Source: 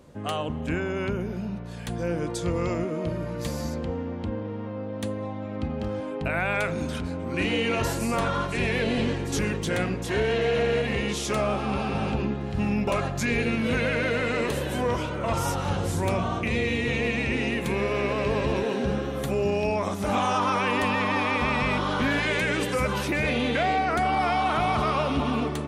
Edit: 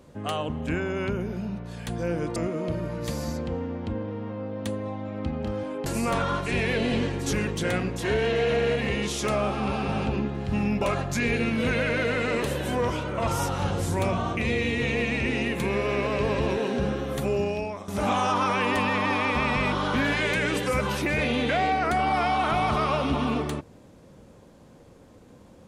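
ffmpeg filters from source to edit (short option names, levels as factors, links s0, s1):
-filter_complex "[0:a]asplit=4[s0][s1][s2][s3];[s0]atrim=end=2.362[s4];[s1]atrim=start=2.728:end=6.232[s5];[s2]atrim=start=7.918:end=19.94,asetpts=PTS-STARTPTS,afade=t=out:st=11.472:d=0.55:silence=0.16788[s6];[s3]atrim=start=19.94,asetpts=PTS-STARTPTS,afade=t=in:d=0.004:c=hsin:silence=0.16788[s7];[s4][s5]acrossfade=d=0.004:c1=hsin:c2=hsin[s8];[s6][s7]concat=n=2:v=0:a=1[s9];[s8][s9]acrossfade=d=0.004:c1=hsin:c2=hsin"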